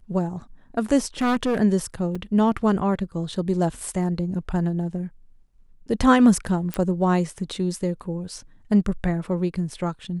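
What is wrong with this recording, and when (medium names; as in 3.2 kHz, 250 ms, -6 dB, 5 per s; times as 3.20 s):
1.21–1.59 s: clipped -18.5 dBFS
2.15 s: dropout 4.5 ms
6.74 s: pop -11 dBFS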